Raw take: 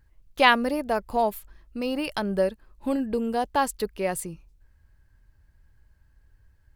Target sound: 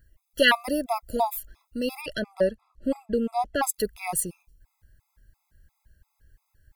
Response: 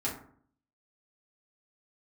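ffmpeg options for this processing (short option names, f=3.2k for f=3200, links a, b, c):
-filter_complex "[0:a]crystalizer=i=1.5:c=0,asettb=1/sr,asplit=3[a][b][c];[a]atrim=end=2.014[d];[b]atrim=start=2.01:end=3.63,asetpts=PTS-STARTPTS,afade=t=in:d=0.004:c=qsin,afade=t=out:st=1.616:d=0.004:c=qsin,aemphasis=mode=reproduction:type=50fm[e];[c]atrim=start=3.626[f];[d][e]acrossfade=d=0.004:c1=hsin:c2=qsin[g];[g][f]acrossfade=d=0.004:c1=qsin:c2=hsin,afftfilt=real='re*gt(sin(2*PI*2.9*pts/sr)*(1-2*mod(floor(b*sr/1024/670),2)),0)':imag='im*gt(sin(2*PI*2.9*pts/sr)*(1-2*mod(floor(b*sr/1024/670),2)),0)':win_size=1024:overlap=0.75,volume=1.5dB"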